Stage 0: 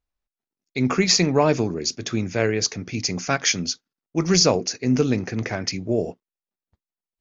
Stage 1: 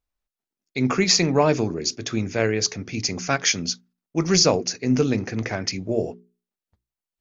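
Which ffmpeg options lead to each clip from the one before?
-af "bandreject=f=60:t=h:w=6,bandreject=f=120:t=h:w=6,bandreject=f=180:t=h:w=6,bandreject=f=240:t=h:w=6,bandreject=f=300:t=h:w=6,bandreject=f=360:t=h:w=6,bandreject=f=420:t=h:w=6"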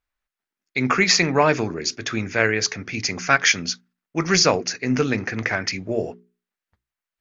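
-af "equalizer=f=1.7k:w=0.8:g=11.5,volume=-2dB"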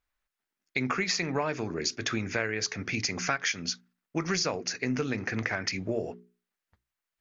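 -af "acompressor=threshold=-27dB:ratio=5"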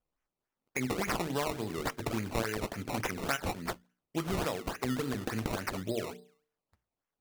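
-af "bandreject=f=149.8:t=h:w=4,bandreject=f=299.6:t=h:w=4,bandreject=f=449.4:t=h:w=4,bandreject=f=599.2:t=h:w=4,bandreject=f=749:t=h:w=4,bandreject=f=898.8:t=h:w=4,bandreject=f=1.0486k:t=h:w=4,bandreject=f=1.1984k:t=h:w=4,bandreject=f=1.3482k:t=h:w=4,bandreject=f=1.498k:t=h:w=4,bandreject=f=1.6478k:t=h:w=4,bandreject=f=1.7976k:t=h:w=4,bandreject=f=1.9474k:t=h:w=4,bandreject=f=2.0972k:t=h:w=4,acrusher=samples=19:mix=1:aa=0.000001:lfo=1:lforange=19:lforate=3.5,volume=-3dB"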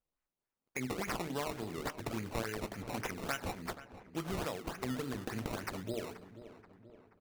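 -filter_complex "[0:a]asplit=2[a][b];[b]adelay=480,lowpass=f=2.6k:p=1,volume=-14dB,asplit=2[c][d];[d]adelay=480,lowpass=f=2.6k:p=1,volume=0.54,asplit=2[e][f];[f]adelay=480,lowpass=f=2.6k:p=1,volume=0.54,asplit=2[g][h];[h]adelay=480,lowpass=f=2.6k:p=1,volume=0.54,asplit=2[i][j];[j]adelay=480,lowpass=f=2.6k:p=1,volume=0.54[k];[a][c][e][g][i][k]amix=inputs=6:normalize=0,volume=-5dB"

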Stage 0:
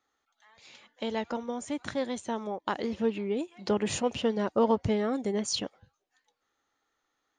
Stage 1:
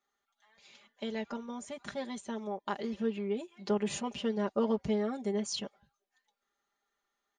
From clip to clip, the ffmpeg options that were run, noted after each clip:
-af "aecho=1:1:5:0.84,volume=-7.5dB"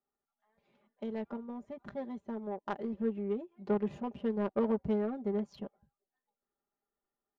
-af "highshelf=f=3.9k:g=7.5,adynamicsmooth=sensitivity=1:basefreq=740"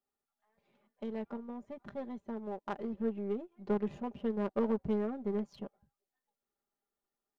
-af "aeval=exprs='if(lt(val(0),0),0.708*val(0),val(0))':c=same"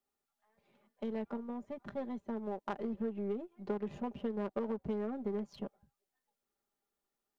-filter_complex "[0:a]acrossover=split=200[a][b];[a]alimiter=level_in=16dB:limit=-24dB:level=0:latency=1,volume=-16dB[c];[c][b]amix=inputs=2:normalize=0,acompressor=threshold=-34dB:ratio=10,volume=2dB"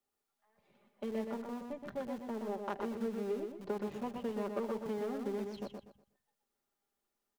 -filter_complex "[0:a]acrossover=split=170|2100[a][b][c];[a]aeval=exprs='(mod(376*val(0)+1,2)-1)/376':c=same[d];[d][b][c]amix=inputs=3:normalize=0,aecho=1:1:122|244|366|488:0.562|0.152|0.041|0.0111"

